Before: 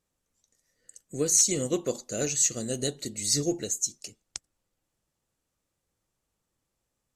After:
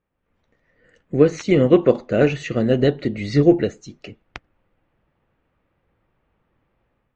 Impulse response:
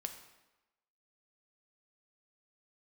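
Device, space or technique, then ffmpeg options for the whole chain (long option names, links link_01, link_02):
action camera in a waterproof case: -af "lowpass=frequency=2500:width=0.5412,lowpass=frequency=2500:width=1.3066,dynaudnorm=framelen=110:gausssize=5:maxgain=11dB,volume=4dB" -ar 22050 -c:a aac -b:a 96k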